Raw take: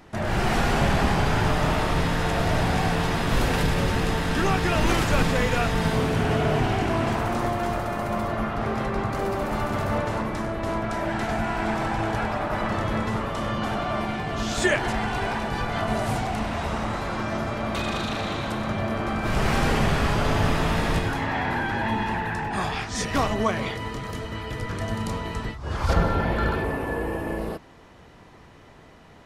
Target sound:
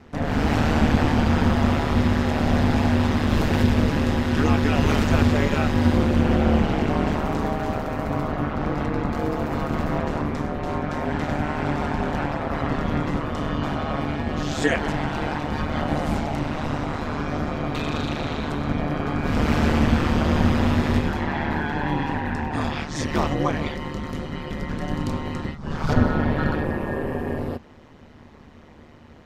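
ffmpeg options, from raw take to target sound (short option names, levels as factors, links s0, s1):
-af "equalizer=f=160:t=o:w=0.67:g=11,equalizer=f=400:t=o:w=0.67:g=3,equalizer=f=10000:t=o:w=0.67:g=-8,aeval=exprs='val(0)*sin(2*PI*75*n/s)':c=same,volume=1.19"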